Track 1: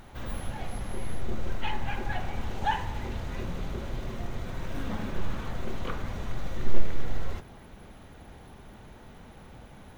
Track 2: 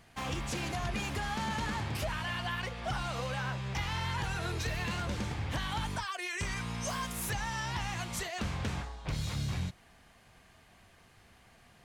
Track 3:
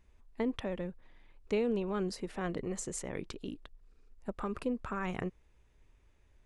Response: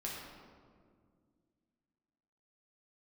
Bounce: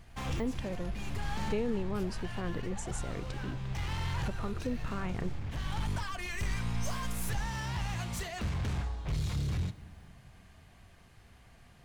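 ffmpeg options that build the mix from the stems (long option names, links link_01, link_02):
-filter_complex "[0:a]acompressor=threshold=-29dB:ratio=6,adelay=100,volume=-16.5dB[link_01];[1:a]volume=34dB,asoftclip=hard,volume=-34dB,volume=-2.5dB,asplit=2[link_02][link_03];[link_03]volume=-14dB[link_04];[2:a]volume=-3.5dB,asplit=2[link_05][link_06];[link_06]apad=whole_len=522158[link_07];[link_02][link_07]sidechaincompress=threshold=-46dB:ratio=8:attack=25:release=671[link_08];[3:a]atrim=start_sample=2205[link_09];[link_04][link_09]afir=irnorm=-1:irlink=0[link_10];[link_01][link_08][link_05][link_10]amix=inputs=4:normalize=0,lowshelf=frequency=140:gain=10.5"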